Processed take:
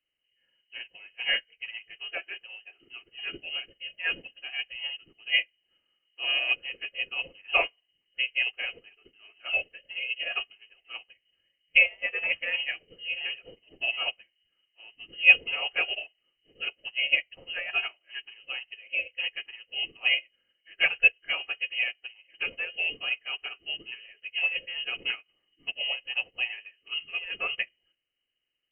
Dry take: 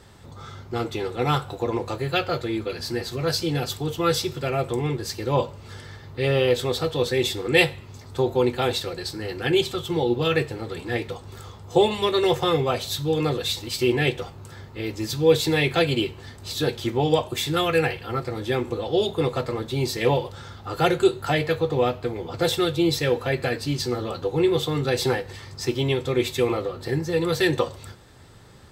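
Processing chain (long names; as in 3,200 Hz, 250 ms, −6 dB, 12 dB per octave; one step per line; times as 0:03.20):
hearing-aid frequency compression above 2,200 Hz 4 to 1
graphic EQ with 10 bands 125 Hz +6 dB, 1,000 Hz +7 dB, 2,000 Hz −5 dB
voice inversion scrambler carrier 3,000 Hz
expander for the loud parts 2.5 to 1, over −36 dBFS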